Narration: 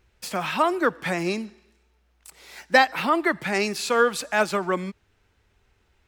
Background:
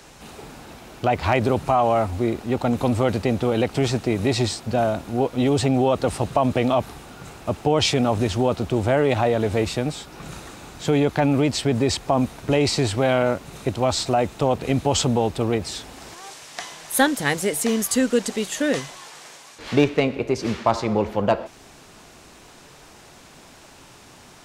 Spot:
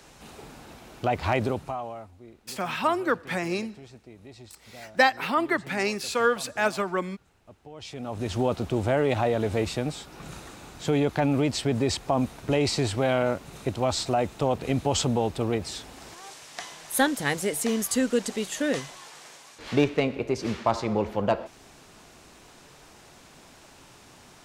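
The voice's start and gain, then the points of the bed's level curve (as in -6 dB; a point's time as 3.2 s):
2.25 s, -3.0 dB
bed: 1.42 s -5 dB
2.19 s -26 dB
7.71 s -26 dB
8.37 s -4.5 dB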